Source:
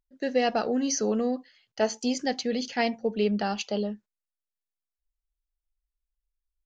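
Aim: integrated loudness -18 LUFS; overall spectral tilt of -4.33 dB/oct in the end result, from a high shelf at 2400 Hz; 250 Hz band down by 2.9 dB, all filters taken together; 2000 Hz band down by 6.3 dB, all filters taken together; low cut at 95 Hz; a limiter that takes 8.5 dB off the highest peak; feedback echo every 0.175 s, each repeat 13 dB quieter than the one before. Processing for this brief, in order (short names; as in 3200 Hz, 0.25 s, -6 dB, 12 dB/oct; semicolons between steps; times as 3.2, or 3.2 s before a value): HPF 95 Hz; bell 250 Hz -3 dB; bell 2000 Hz -5 dB; high shelf 2400 Hz -5.5 dB; limiter -22.5 dBFS; feedback echo 0.175 s, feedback 22%, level -13 dB; gain +14.5 dB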